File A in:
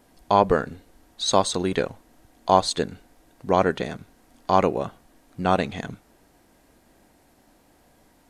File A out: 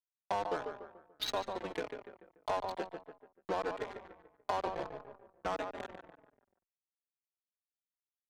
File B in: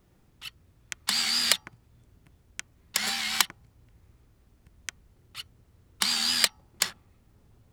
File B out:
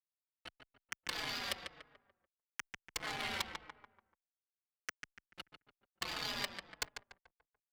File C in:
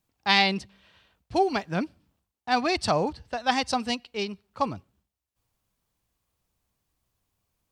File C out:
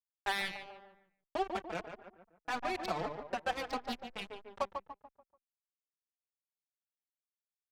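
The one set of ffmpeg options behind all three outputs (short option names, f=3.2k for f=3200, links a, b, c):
-filter_complex "[0:a]acompressor=threshold=-30dB:ratio=4,highpass=420,aeval=exprs='val(0)*gte(abs(val(0)),0.0251)':c=same,adynamicsmooth=sensitivity=4.5:basefreq=970,asplit=2[a][b];[b]adelay=145,lowpass=f=2.2k:p=1,volume=-7dB,asplit=2[c][d];[d]adelay=145,lowpass=f=2.2k:p=1,volume=0.43,asplit=2[e][f];[f]adelay=145,lowpass=f=2.2k:p=1,volume=0.43,asplit=2[g][h];[h]adelay=145,lowpass=f=2.2k:p=1,volume=0.43,asplit=2[i][j];[j]adelay=145,lowpass=f=2.2k:p=1,volume=0.43[k];[a][c][e][g][i][k]amix=inputs=6:normalize=0,adynamicequalizer=threshold=0.00355:dfrequency=1400:dqfactor=1.3:tfrequency=1400:tqfactor=1.3:attack=5:release=100:ratio=0.375:range=2:mode=cutabove:tftype=bell,asoftclip=type=tanh:threshold=-23.5dB,highshelf=f=5.9k:g=-4.5,asplit=2[l][m];[m]adelay=4.3,afreqshift=-1.6[n];[l][n]amix=inputs=2:normalize=1,volume=4.5dB"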